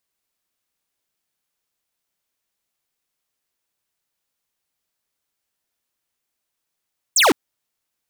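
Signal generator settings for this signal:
single falling chirp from 9,100 Hz, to 240 Hz, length 0.16 s square, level −13.5 dB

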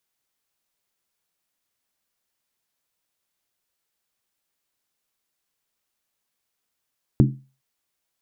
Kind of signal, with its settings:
struck skin length 0.41 s, lowest mode 134 Hz, decay 0.34 s, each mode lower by 3.5 dB, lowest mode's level −10 dB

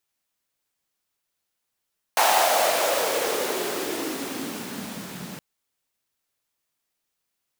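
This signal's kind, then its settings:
filter sweep on noise pink, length 3.22 s highpass, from 810 Hz, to 160 Hz, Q 4, gain ramp −20 dB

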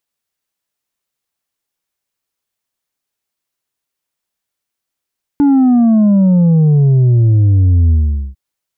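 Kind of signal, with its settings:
bass drop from 290 Hz, over 2.95 s, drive 4 dB, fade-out 0.44 s, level −7 dB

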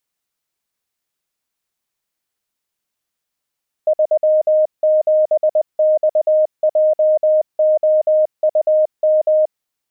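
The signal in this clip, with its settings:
Morse code "37XJOUM" 20 words per minute 619 Hz −10 dBFS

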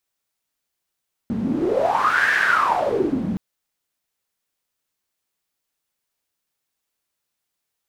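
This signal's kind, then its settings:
wind from filtered noise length 2.07 s, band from 210 Hz, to 1,700 Hz, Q 9.6, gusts 1, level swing 4 dB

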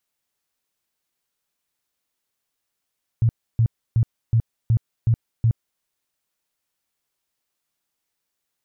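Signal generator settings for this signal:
tone bursts 114 Hz, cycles 8, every 0.37 s, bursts 7, −13.5 dBFS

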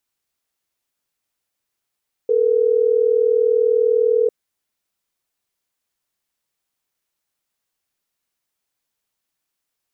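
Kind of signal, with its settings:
call progress tone ringback tone, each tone −16 dBFS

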